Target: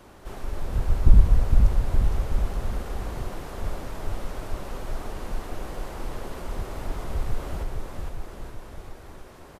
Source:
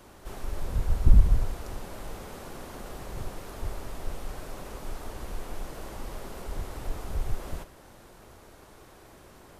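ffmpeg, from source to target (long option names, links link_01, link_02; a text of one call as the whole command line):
ffmpeg -i in.wav -af "highshelf=frequency=4900:gain=-6,aecho=1:1:460|874|1247|1582|1884:0.631|0.398|0.251|0.158|0.1,volume=2.5dB" out.wav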